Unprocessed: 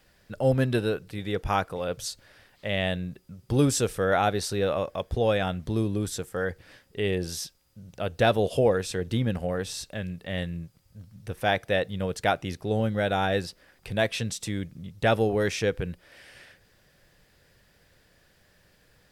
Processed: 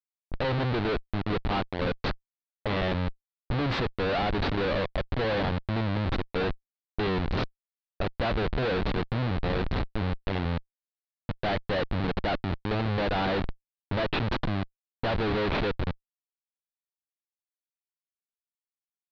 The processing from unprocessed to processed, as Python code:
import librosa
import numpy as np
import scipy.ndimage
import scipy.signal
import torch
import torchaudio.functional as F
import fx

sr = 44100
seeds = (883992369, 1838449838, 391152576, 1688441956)

y = fx.schmitt(x, sr, flips_db=-28.5)
y = fx.env_lowpass(y, sr, base_hz=600.0, full_db=-31.0)
y = scipy.signal.sosfilt(scipy.signal.ellip(4, 1.0, 70, 4200.0, 'lowpass', fs=sr, output='sos'), y)
y = y * 10.0 ** (3.0 / 20.0)